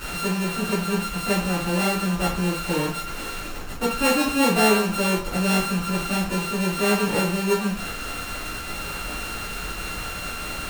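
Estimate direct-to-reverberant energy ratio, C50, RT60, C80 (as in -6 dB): -9.0 dB, 5.5 dB, 0.45 s, 10.5 dB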